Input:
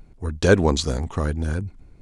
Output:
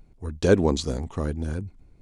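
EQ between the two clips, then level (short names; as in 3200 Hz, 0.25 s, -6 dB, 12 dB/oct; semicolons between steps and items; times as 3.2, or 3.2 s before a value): dynamic EQ 300 Hz, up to +5 dB, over -29 dBFS, Q 0.73; bell 1500 Hz -3 dB 0.77 oct; -5.5 dB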